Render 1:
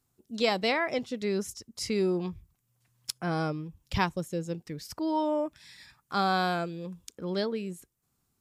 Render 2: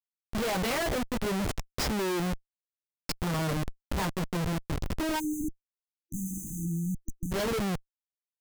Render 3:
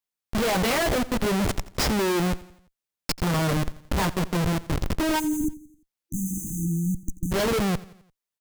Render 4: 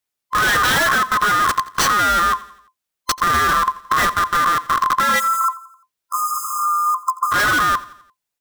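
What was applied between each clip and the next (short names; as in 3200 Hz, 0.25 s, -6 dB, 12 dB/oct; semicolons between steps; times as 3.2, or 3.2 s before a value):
chorus voices 4, 0.6 Hz, delay 14 ms, depth 3.4 ms; Schmitt trigger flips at -37 dBFS; spectral delete 5.2–7.32, 340–6000 Hz; gain +5 dB
feedback echo 86 ms, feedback 49%, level -19 dB; gain +6 dB
band-swap scrambler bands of 1000 Hz; gain +7 dB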